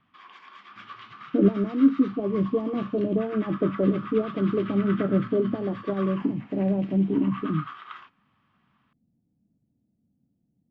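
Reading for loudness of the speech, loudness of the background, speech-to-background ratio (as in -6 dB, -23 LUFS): -25.5 LUFS, -41.5 LUFS, 16.0 dB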